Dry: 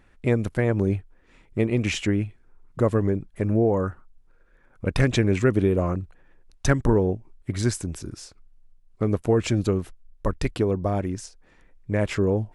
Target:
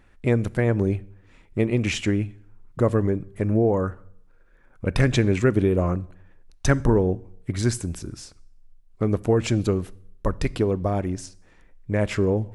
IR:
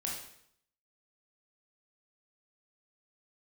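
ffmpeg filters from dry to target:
-filter_complex "[0:a]asplit=2[link_01][link_02];[1:a]atrim=start_sample=2205,lowshelf=frequency=130:gain=11.5[link_03];[link_02][link_03]afir=irnorm=-1:irlink=0,volume=-20.5dB[link_04];[link_01][link_04]amix=inputs=2:normalize=0"

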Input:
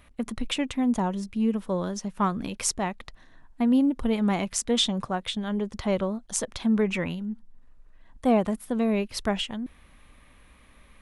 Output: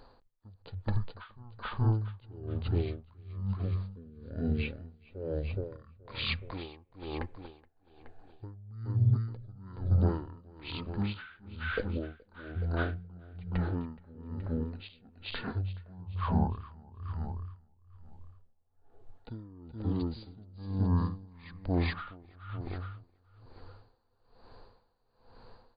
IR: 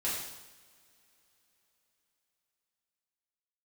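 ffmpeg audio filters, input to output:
-filter_complex "[0:a]equalizer=frequency=1100:width_type=o:width=0.87:gain=4,alimiter=limit=-19dB:level=0:latency=1:release=319,asetrate=18846,aresample=44100,aecho=1:1:423|846|1269|1692|2115:0.668|0.241|0.0866|0.0312|0.0112,asplit=2[link_01][link_02];[1:a]atrim=start_sample=2205,lowpass=frequency=2300:width=0.5412,lowpass=frequency=2300:width=1.3066[link_03];[link_02][link_03]afir=irnorm=-1:irlink=0,volume=-28.5dB[link_04];[link_01][link_04]amix=inputs=2:normalize=0,aeval=exprs='val(0)*pow(10,-24*(0.5-0.5*cos(2*PI*1.1*n/s))/20)':channel_layout=same"

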